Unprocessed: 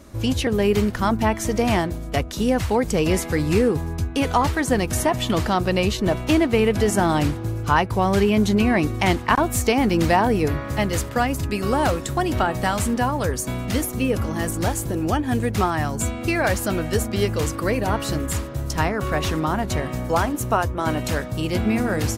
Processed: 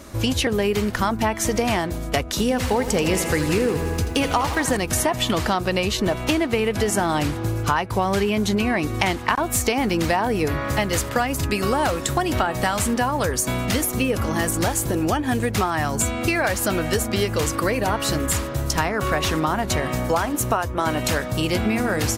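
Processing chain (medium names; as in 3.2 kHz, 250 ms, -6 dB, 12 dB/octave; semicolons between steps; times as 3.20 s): bass shelf 440 Hz -6 dB; compression 5:1, threshold -26 dBFS, peak gain reduction 11.5 dB; 2.42–4.77 s: bit-crushed delay 83 ms, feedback 80%, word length 9-bit, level -11.5 dB; trim +8 dB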